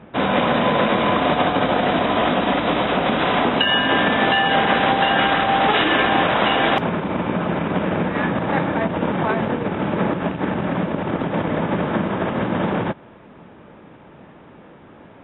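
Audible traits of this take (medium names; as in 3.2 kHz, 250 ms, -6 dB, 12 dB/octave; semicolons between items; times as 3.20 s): noise floor -45 dBFS; spectral tilt -3.0 dB/octave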